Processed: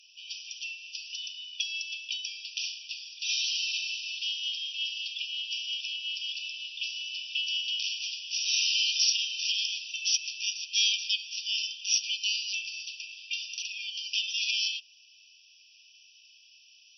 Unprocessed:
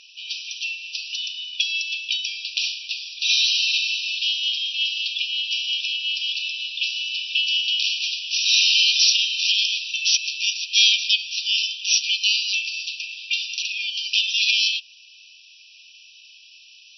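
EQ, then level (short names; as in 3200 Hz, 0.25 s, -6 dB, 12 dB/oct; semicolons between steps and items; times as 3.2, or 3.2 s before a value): resonant high-pass 2700 Hz, resonance Q 1.5; differentiator; bell 4000 Hz -14 dB 0.21 oct; -4.5 dB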